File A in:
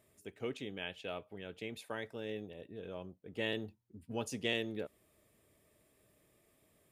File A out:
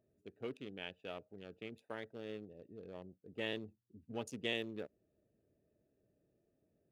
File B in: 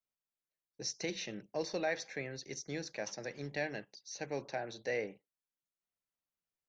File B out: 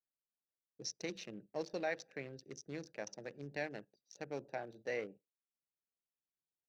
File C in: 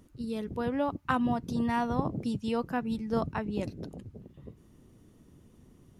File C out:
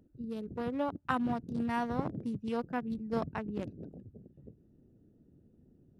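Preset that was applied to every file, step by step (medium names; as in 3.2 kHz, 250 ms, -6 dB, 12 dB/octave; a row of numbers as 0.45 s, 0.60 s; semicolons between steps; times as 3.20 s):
local Wiener filter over 41 samples; bass shelf 92 Hz -8 dB; trim -2.5 dB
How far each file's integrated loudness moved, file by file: -4.0 LU, -4.5 LU, -4.0 LU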